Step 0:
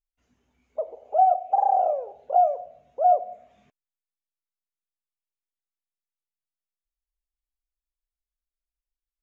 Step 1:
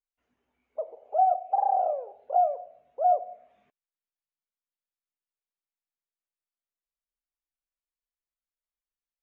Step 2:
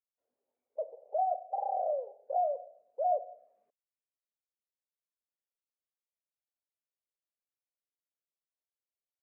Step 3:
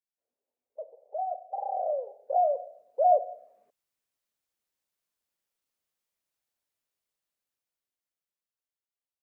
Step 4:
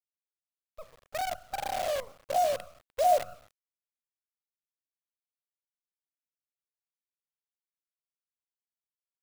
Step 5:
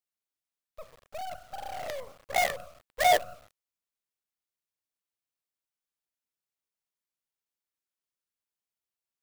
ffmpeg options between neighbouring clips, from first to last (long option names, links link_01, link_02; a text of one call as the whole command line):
ffmpeg -i in.wav -af "bass=frequency=250:gain=-11,treble=frequency=4000:gain=-14,volume=-3.5dB" out.wav
ffmpeg -i in.wav -af "bandpass=frequency=540:width_type=q:width=3.8:csg=0" out.wav
ffmpeg -i in.wav -af "dynaudnorm=framelen=340:gausssize=13:maxgain=14dB,volume=-5dB" out.wav
ffmpeg -i in.wav -af "acrusher=bits=6:dc=4:mix=0:aa=0.000001,volume=-2dB" out.wav
ffmpeg -i in.wav -af "aeval=exprs='0.211*(cos(1*acos(clip(val(0)/0.211,-1,1)))-cos(1*PI/2))+0.0668*(cos(7*acos(clip(val(0)/0.211,-1,1)))-cos(7*PI/2))':channel_layout=same" out.wav